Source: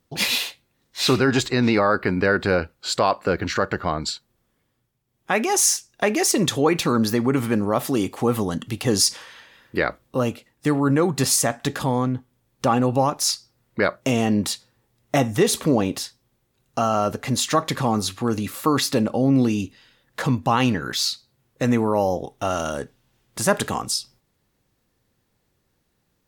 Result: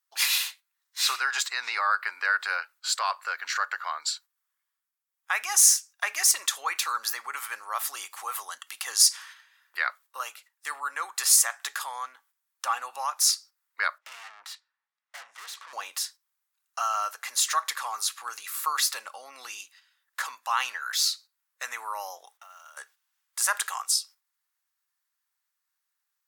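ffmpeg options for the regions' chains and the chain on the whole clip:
-filter_complex "[0:a]asettb=1/sr,asplit=3[a][b][c];[a]atrim=end=13.984[d];[b]atrim=start=13.98:end=15.73,asetpts=PTS-STARTPTS,afade=t=in:d=0.004:c=qsin,afade=t=out:st=1.746:d=0.004:c=qsin,highpass=190,lowpass=3.2k,aeval=exprs='(tanh(39.8*val(0)+0.5)-tanh(0.5))/39.8':c=same[e];[c]atrim=start=15.726[f];[d][e]acrossfade=d=0.004:c1=hsin:c2=qsin[g];[g][f]acrossfade=d=0.004:c1=qsin:c2=hsin,asettb=1/sr,asplit=3[h][i][j];[h]atrim=end=22.374[k];[i]atrim=start=22.37:end=22.77,asetpts=PTS-STARTPTS,afade=t=in:d=0.004:c=qsin,afade=t=out:st=0.396:d=0.004:c=qsin,acompressor=threshold=-37dB:ratio=10:attack=3.2:release=140:knee=1:detection=peak,lowpass=f=3.5k:p=1,acrusher=bits=6:mode=log:mix=0:aa=0.000001[l];[j]atrim=start=22.766[m];[k][l]acrossfade=d=0.004:c1=hsin:c2=qsin[n];[n][m]acrossfade=d=0.004:c1=qsin:c2=hsin,agate=range=-8dB:threshold=-43dB:ratio=16:detection=peak,highpass=f=1.2k:w=0.5412,highpass=f=1.2k:w=1.3066,equalizer=f=3k:t=o:w=1.9:g=-8,volume=3.5dB"

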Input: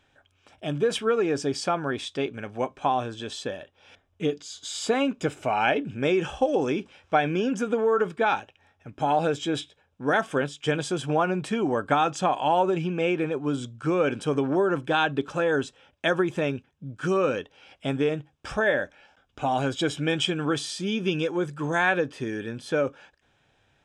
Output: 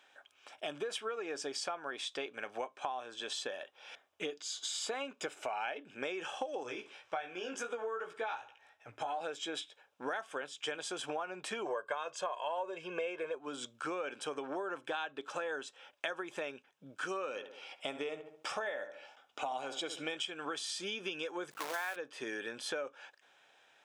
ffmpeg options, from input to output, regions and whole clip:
-filter_complex "[0:a]asettb=1/sr,asplit=3[a][b][c];[a]atrim=end=6.634[d];[b]atrim=start=6.63:end=9.21,asetpts=PTS-STARTPTS,afade=t=in:d=0.004:c=qsin,afade=t=out:st=2.576:d=0.004:c=qsin,flanger=delay=16.5:depth=2.1:speed=2.7,lowshelf=f=150:t=q:w=3:g=6.5,aecho=1:1:63|126|189:0.106|0.0424|0.0169,atrim=end_sample=113778[e];[c]atrim=start=9.206[f];[d][e]acrossfade=d=0.004:c1=hsin:c2=qsin[g];[g][f]acrossfade=d=0.004:c1=qsin:c2=hsin,asettb=1/sr,asplit=3[h][i][j];[h]atrim=end=11.654[k];[i]atrim=start=11.65:end=13.35,asetpts=PTS-STARTPTS,afade=t=in:d=0.004:c=qsin,afade=t=out:st=1.696:d=0.004:c=qsin,equalizer=f=690:t=o:w=2.8:g=4.5,aecho=1:1:1.9:0.82,atrim=end_sample=74970[l];[j]atrim=start=13.346[m];[k][l]acrossfade=d=0.004:c1=hsin:c2=qsin[n];[n][m]acrossfade=d=0.004:c1=qsin:c2=hsin,asettb=1/sr,asplit=3[o][p][q];[o]atrim=end=17.284[r];[p]atrim=start=17.28:end=20.17,asetpts=PTS-STARTPTS,afade=t=in:d=0.004:c=qsin,afade=t=out:st=2.886:d=0.004:c=qsin,bandreject=f=1.6k:w=6.7,asplit=2[s][t];[t]adelay=70,lowpass=f=2k:p=1,volume=-11.5dB,asplit=2[u][v];[v]adelay=70,lowpass=f=2k:p=1,volume=0.41,asplit=2[w][x];[x]adelay=70,lowpass=f=2k:p=1,volume=0.41,asplit=2[y][z];[z]adelay=70,lowpass=f=2k:p=1,volume=0.41[aa];[s][u][w][y][aa]amix=inputs=5:normalize=0,atrim=end_sample=127449[ab];[q]atrim=start=20.166[ac];[r][ab]acrossfade=d=0.004:c1=hsin:c2=qsin[ad];[ad][ac]acrossfade=d=0.004:c1=qsin:c2=hsin,asettb=1/sr,asplit=3[ae][af][ag];[ae]atrim=end=21.514[ah];[af]atrim=start=21.51:end=21.96,asetpts=PTS-STARTPTS,afade=t=in:d=0.004:c=qsin,afade=t=out:st=0.446:d=0.004:c=qsin,equalizer=f=180:t=o:w=0.9:g=-14.5,aeval=exprs='val(0)+0.00631*(sin(2*PI*50*n/s)+sin(2*PI*2*50*n/s)/2+sin(2*PI*3*50*n/s)/3+sin(2*PI*4*50*n/s)/4+sin(2*PI*5*50*n/s)/5)':c=same,acrusher=bits=6:dc=4:mix=0:aa=0.000001[ai];[ag]atrim=start=21.956[aj];[ah][ai]acrossfade=d=0.004:c1=hsin:c2=qsin[ak];[ak][aj]acrossfade=d=0.004:c1=qsin:c2=hsin,highpass=580,acompressor=threshold=-39dB:ratio=6,volume=2.5dB"

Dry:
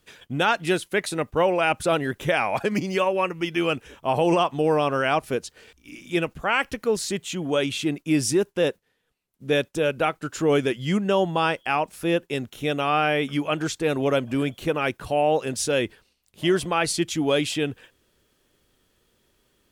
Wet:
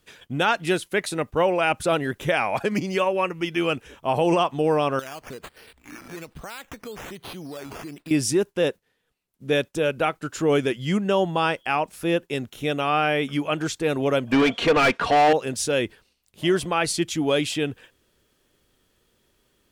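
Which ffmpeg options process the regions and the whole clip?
-filter_complex "[0:a]asettb=1/sr,asplit=3[a][b][c];[a]atrim=end=4.994[d];[b]atrim=start=4.99:end=8.11,asetpts=PTS-STARTPTS,afade=t=in:d=0.004:c=qsin,afade=t=out:st=3.116:d=0.004:c=qsin,equalizer=f=8.6k:w=0.46:g=4.5,acompressor=threshold=-34dB:ratio=6:attack=3.2:release=140:knee=1:detection=peak,acrusher=samples=9:mix=1:aa=0.000001:lfo=1:lforange=5.4:lforate=1.2[e];[c]atrim=start=8.106[f];[d][e]acrossfade=d=0.004:c1=hsin:c2=qsin[g];[g][f]acrossfade=d=0.004:c1=qsin:c2=hsin,asettb=1/sr,asplit=3[h][i][j];[h]atrim=end=14.324[k];[i]atrim=start=14.32:end=15.33,asetpts=PTS-STARTPTS,afade=t=in:d=0.004:c=qsin,afade=t=out:st=1.006:d=0.004:c=qsin,lowpass=5.4k,aecho=1:1:4.3:0.41,atrim=end_sample=44541,asplit=2[l][m];[m]highpass=f=720:p=1,volume=24dB,asoftclip=type=tanh:threshold=-10dB[n];[l][n]amix=inputs=2:normalize=0,lowpass=f=3.1k:p=1,volume=-6dB[o];[j]atrim=start=15.326[p];[k][o]acrossfade=d=0.004:c1=hsin:c2=qsin[q];[q][p]acrossfade=d=0.004:c1=qsin:c2=hsin"

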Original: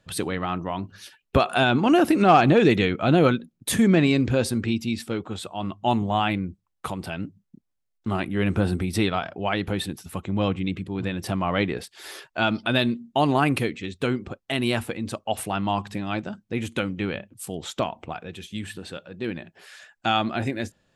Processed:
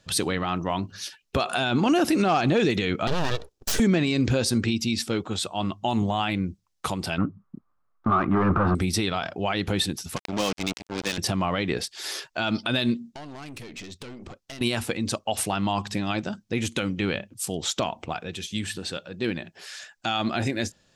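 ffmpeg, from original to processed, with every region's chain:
-filter_complex "[0:a]asettb=1/sr,asplit=3[a][b][c];[a]atrim=end=3.074[d];[b]atrim=start=3.07:end=3.8,asetpts=PTS-STARTPTS,afade=t=in:d=0.004:c=qsin,afade=t=out:st=0.726:d=0.004:c=qsin,highpass=120,aeval=exprs='abs(val(0))':c=same,bandreject=f=2.1k:w=12[e];[c]atrim=start=3.796[f];[d][e]acrossfade=d=0.004:c1=hsin:c2=qsin[g];[g][f]acrossfade=d=0.004:c1=qsin:c2=hsin,asettb=1/sr,asplit=3[h][i][j];[h]atrim=end=7.184[k];[i]atrim=start=7.18:end=8.75,asetpts=PTS-STARTPTS,afade=t=in:d=0.004:c=qsin,afade=t=out:st=1.566:d=0.004:c=qsin,asoftclip=type=hard:threshold=-22.5dB,lowpass=f=1.2k:t=q:w=8.7,acontrast=53[l];[j]atrim=start=8.746[m];[k][l]acrossfade=d=0.004:c1=hsin:c2=qsin[n];[n][m]acrossfade=d=0.004:c1=qsin:c2=hsin,asettb=1/sr,asplit=3[o][p][q];[o]atrim=end=10.164[r];[p]atrim=start=10.16:end=11.18,asetpts=PTS-STARTPTS,afade=t=in:d=0.004:c=qsin,afade=t=out:st=1.016:d=0.004:c=qsin,highpass=f=140:w=0.5412,highpass=f=140:w=1.3066,lowshelf=f=230:g=-10,acrusher=bits=4:mix=0:aa=0.5[s];[q]atrim=start=11.176[t];[r][s]acrossfade=d=0.004:c1=hsin:c2=qsin[u];[u][t]acrossfade=d=0.004:c1=qsin:c2=hsin,asettb=1/sr,asplit=3[v][w][x];[v]atrim=end=13.104[y];[w]atrim=start=13.1:end=14.61,asetpts=PTS-STARTPTS,afade=t=in:d=0.004:c=qsin,afade=t=out:st=1.506:d=0.004:c=qsin,acompressor=threshold=-33dB:ratio=10:attack=3.2:release=140:knee=1:detection=peak,aeval=exprs='(tanh(79.4*val(0)+0.45)-tanh(0.45))/79.4':c=same[z];[x]atrim=start=14.606[aa];[y][z]acrossfade=d=0.004:c1=hsin:c2=qsin[ab];[ab][aa]acrossfade=d=0.004:c1=qsin:c2=hsin,equalizer=f=5.6k:w=1:g=10,alimiter=limit=-15.5dB:level=0:latency=1:release=71,volume=2dB"

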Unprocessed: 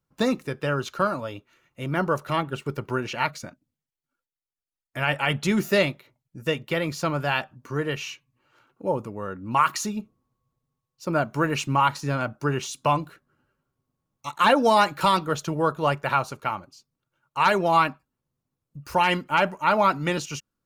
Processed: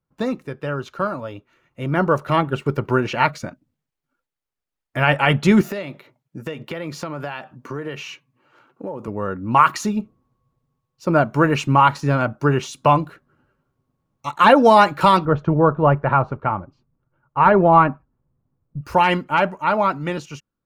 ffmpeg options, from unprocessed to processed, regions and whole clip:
-filter_complex "[0:a]asettb=1/sr,asplit=3[a][b][c];[a]atrim=end=5.614[d];[b]atrim=start=5.61:end=9.08,asetpts=PTS-STARTPTS,afade=t=in:d=0.004:c=qsin,afade=t=out:st=3.466:d=0.004:c=qsin,highpass=150,acompressor=threshold=-33dB:ratio=8:attack=3.2:release=140:knee=1:detection=peak[e];[c]atrim=start=9.076[f];[d][e]acrossfade=d=0.004:c1=hsin:c2=qsin[g];[g][f]acrossfade=d=0.004:c1=qsin:c2=hsin,asettb=1/sr,asplit=3[h][i][j];[h]atrim=end=15.254[k];[i]atrim=start=15.25:end=18.81,asetpts=PTS-STARTPTS,afade=t=in:d=0.004:c=qsin,afade=t=out:st=3.556:d=0.004:c=qsin,lowpass=1.5k,lowshelf=f=110:g=10.5[l];[j]atrim=start=18.806[m];[k][l]acrossfade=d=0.004:c1=hsin:c2=qsin[n];[n][m]acrossfade=d=0.004:c1=qsin:c2=hsin,highshelf=f=3.2k:g=-11,dynaudnorm=f=290:g=13:m=11.5dB"

